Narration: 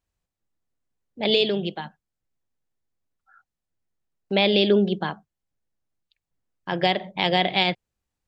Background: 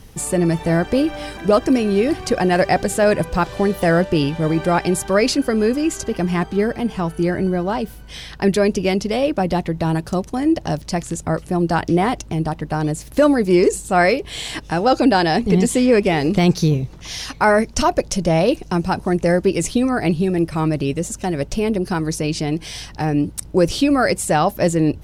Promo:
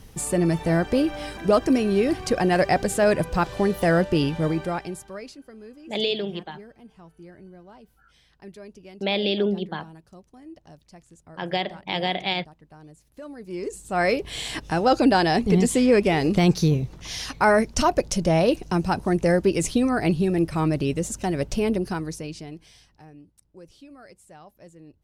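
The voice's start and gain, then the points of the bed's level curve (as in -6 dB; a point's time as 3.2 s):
4.70 s, -4.5 dB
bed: 4.44 s -4 dB
5.39 s -26.5 dB
13.24 s -26.5 dB
14.18 s -3.5 dB
21.74 s -3.5 dB
23.26 s -31 dB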